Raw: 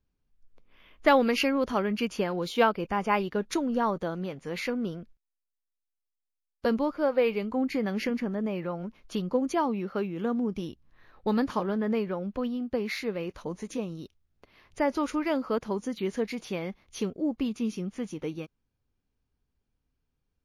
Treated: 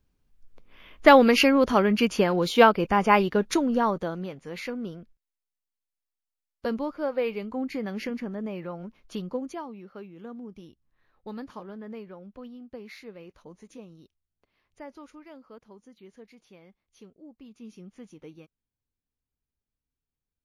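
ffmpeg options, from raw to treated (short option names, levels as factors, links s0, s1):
-af "volume=5.31,afade=t=out:st=3.2:d=1.24:silence=0.334965,afade=t=out:st=9.23:d=0.42:silence=0.354813,afade=t=out:st=14.02:d=1.24:silence=0.421697,afade=t=in:st=17.42:d=0.44:silence=0.398107"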